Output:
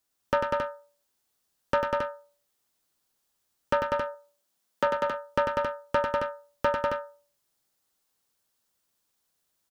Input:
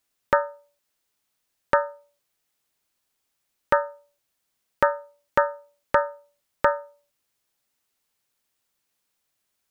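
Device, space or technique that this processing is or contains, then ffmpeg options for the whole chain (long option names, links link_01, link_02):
one-band saturation: -filter_complex "[0:a]asettb=1/sr,asplit=3[link_01][link_02][link_03];[link_01]atrim=end=3.874[link_04];[link_02]atrim=start=3.87:end=4.87,asetpts=PTS-STARTPTS,afade=type=in:duration=0.004:curve=qsin,afade=type=out:start_time=0.996:duration=0.004:curve=qsin,highpass=frequency=160:width=0.5412,highpass=frequency=160:width=1.3066[link_05];[link_03]atrim=start=4.866[link_06];[link_04][link_05]acrossfade=duration=0.004:curve1=hsin:curve2=qsin[link_07];[link_07][link_06]acrossfade=duration=0.004:curve1=qsin:curve2=hsin,equalizer=frequency=2300:width=1.8:gain=-5.5,acrossover=split=410|3200[link_08][link_09][link_10];[link_09]asoftclip=type=tanh:threshold=-17dB[link_11];[link_08][link_11][link_10]amix=inputs=3:normalize=0,aecho=1:1:96.21|195.3|271.1:0.562|0.631|0.501,volume=-2dB"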